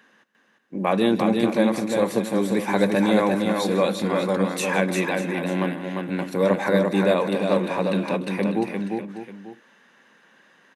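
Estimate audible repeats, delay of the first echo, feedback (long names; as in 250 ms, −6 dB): 4, 158 ms, repeats not evenly spaced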